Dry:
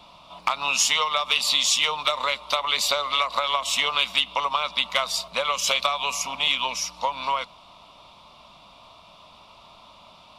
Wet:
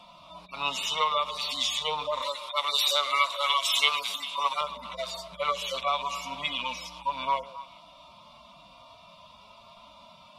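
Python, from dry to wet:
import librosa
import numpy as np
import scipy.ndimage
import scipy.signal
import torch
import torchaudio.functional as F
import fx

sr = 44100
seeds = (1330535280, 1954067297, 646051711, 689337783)

y = fx.hpss_only(x, sr, part='harmonic')
y = fx.tilt_eq(y, sr, slope=4.0, at=(2.22, 4.61))
y = fx.echo_stepped(y, sr, ms=135, hz=450.0, octaves=1.4, feedback_pct=70, wet_db=-11.5)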